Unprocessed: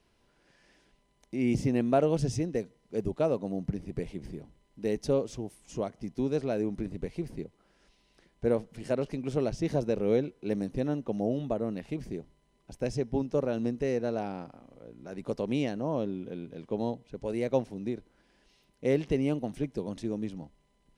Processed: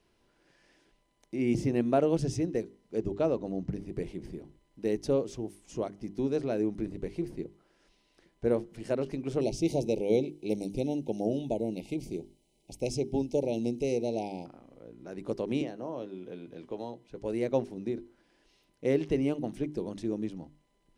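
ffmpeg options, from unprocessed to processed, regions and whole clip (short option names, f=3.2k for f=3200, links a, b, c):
-filter_complex "[0:a]asettb=1/sr,asplit=3[a][b][c];[a]atrim=end=2.984[d];[b]atrim=start=2.98:end=3.69,asetpts=PTS-STARTPTS,afade=t=in:d=0.004:c=qsin,afade=t=out:st=0.706:d=0.004:c=qsin,lowpass=f=7.7k:w=0.5412,lowpass=f=7.7k:w=1.3066,aeval=exprs='val(0)+0.00224*(sin(2*PI*60*n/s)+sin(2*PI*2*60*n/s)/2+sin(2*PI*3*60*n/s)/3+sin(2*PI*4*60*n/s)/4+sin(2*PI*5*60*n/s)/5)':c=same[e];[c]atrim=start=3.686[f];[d][e]acrossfade=d=0.004:c1=hsin:c2=qsin[g];[g][f]acrossfade=d=0.004:c1=qsin:c2=hsin,asettb=1/sr,asplit=3[h][i][j];[h]atrim=end=9.414[k];[i]atrim=start=9.41:end=14.46,asetpts=PTS-STARTPTS,afade=t=in:d=0.004:c=qsin,afade=t=out:st=5.046:d=0.004:c=qsin,asuperstop=centerf=1400:order=20:qfactor=1.2,highshelf=f=3.9k:g=10[l];[j]atrim=start=14.456[m];[k][l]acrossfade=d=0.004:c1=hsin:c2=qsin[n];[n][m]acrossfade=d=0.004:c1=qsin:c2=hsin,asettb=1/sr,asplit=3[o][p][q];[o]atrim=end=15.614[r];[p]atrim=start=15.61:end=17.21,asetpts=PTS-STARTPTS,afade=t=in:d=0.004:c=qsin,afade=t=out:st=1.596:d=0.004:c=qsin,acrossover=split=410|970[s][t][u];[s]acompressor=threshold=-44dB:ratio=4[v];[t]acompressor=threshold=-37dB:ratio=4[w];[u]acompressor=threshold=-48dB:ratio=4[x];[v][w][x]amix=inputs=3:normalize=0,asplit=2[y][z];[z]adelay=16,volume=-11.5dB[aa];[y][aa]amix=inputs=2:normalize=0,atrim=end_sample=70560[ab];[q]atrim=start=17.206[ac];[r][ab]acrossfade=d=0.004:c1=hsin:c2=qsin[ad];[ad][ac]acrossfade=d=0.004:c1=qsin:c2=hsin,equalizer=f=340:w=3.1:g=5.5,bandreject=f=50:t=h:w=6,bandreject=f=100:t=h:w=6,bandreject=f=150:t=h:w=6,bandreject=f=200:t=h:w=6,bandreject=f=250:t=h:w=6,bandreject=f=300:t=h:w=6,bandreject=f=350:t=h:w=6,bandreject=f=400:t=h:w=6,volume=-1.5dB"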